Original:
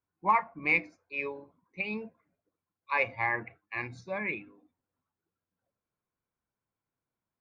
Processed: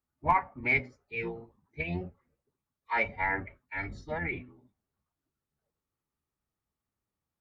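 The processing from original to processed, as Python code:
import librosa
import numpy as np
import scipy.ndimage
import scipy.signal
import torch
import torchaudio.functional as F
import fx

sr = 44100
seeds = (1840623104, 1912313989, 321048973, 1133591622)

y = fx.octave_divider(x, sr, octaves=1, level_db=1.0)
y = fx.pitch_keep_formants(y, sr, semitones=-3.5)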